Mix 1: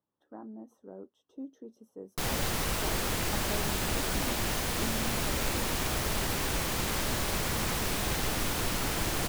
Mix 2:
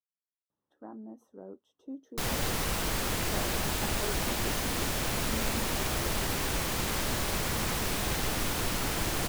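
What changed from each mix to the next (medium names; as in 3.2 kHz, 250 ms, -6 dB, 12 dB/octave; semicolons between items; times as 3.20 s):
speech: entry +0.50 s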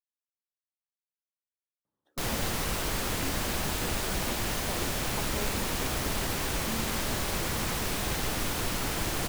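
speech: entry +1.35 s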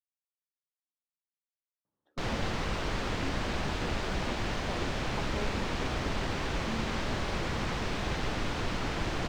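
master: add distance through air 150 m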